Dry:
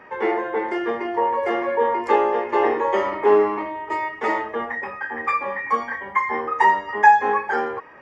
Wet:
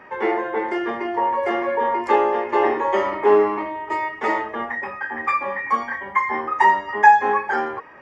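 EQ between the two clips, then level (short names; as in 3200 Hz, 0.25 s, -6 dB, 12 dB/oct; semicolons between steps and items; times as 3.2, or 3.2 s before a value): notch 470 Hz, Q 13; +1.0 dB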